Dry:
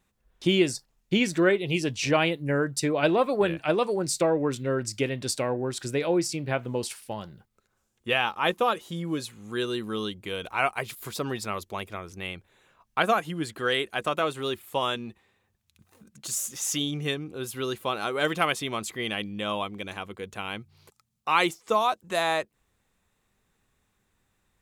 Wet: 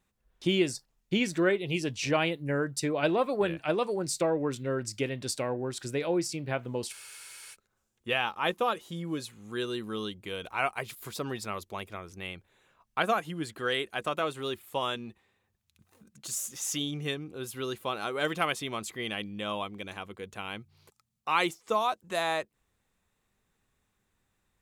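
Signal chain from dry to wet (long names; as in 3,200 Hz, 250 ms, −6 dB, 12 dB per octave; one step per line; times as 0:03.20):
frozen spectrum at 0:06.94, 0.60 s
level −4 dB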